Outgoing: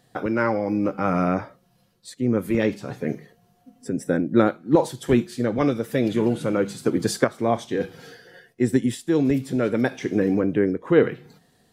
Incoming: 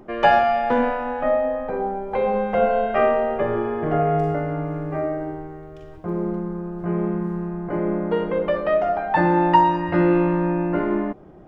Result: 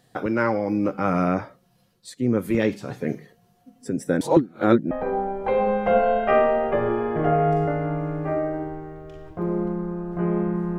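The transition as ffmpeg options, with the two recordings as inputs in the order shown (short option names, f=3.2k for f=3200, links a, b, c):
-filter_complex "[0:a]apad=whole_dur=10.78,atrim=end=10.78,asplit=2[a][b];[a]atrim=end=4.212[c];[b]atrim=start=4.208:end=4.912,asetpts=PTS-STARTPTS,areverse[d];[1:a]atrim=start=1.578:end=7.45[e];[c][d]acrossfade=d=0.004:c1=hsin:c2=hsin[f];[f][e]acrossfade=d=0.004:c1=hsin:c2=hsin"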